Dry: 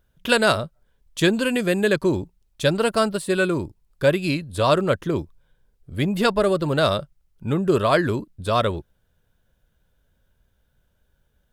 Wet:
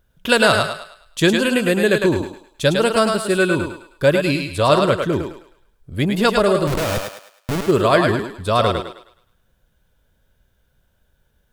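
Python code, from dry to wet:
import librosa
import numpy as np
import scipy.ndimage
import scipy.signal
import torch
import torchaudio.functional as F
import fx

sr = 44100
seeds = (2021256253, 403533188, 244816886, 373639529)

y = fx.schmitt(x, sr, flips_db=-21.0, at=(6.67, 7.67))
y = fx.echo_thinned(y, sr, ms=105, feedback_pct=40, hz=450.0, wet_db=-3.5)
y = y * 10.0 ** (3.0 / 20.0)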